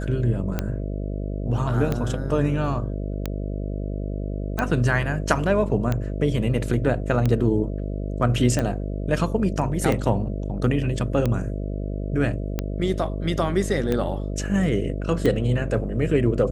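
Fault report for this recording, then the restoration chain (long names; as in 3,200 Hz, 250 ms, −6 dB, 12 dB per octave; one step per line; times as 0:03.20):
mains buzz 50 Hz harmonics 13 −28 dBFS
scratch tick 45 rpm −11 dBFS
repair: click removal
hum removal 50 Hz, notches 13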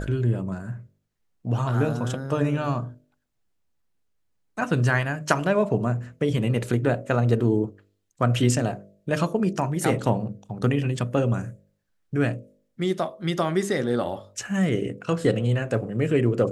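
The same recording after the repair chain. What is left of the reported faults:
none of them is left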